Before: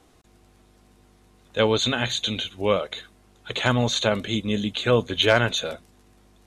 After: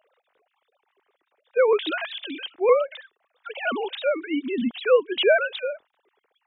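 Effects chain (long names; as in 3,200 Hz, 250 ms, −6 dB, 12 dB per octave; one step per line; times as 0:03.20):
three sine waves on the formant tracks
pitch modulation by a square or saw wave saw up 5.2 Hz, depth 100 cents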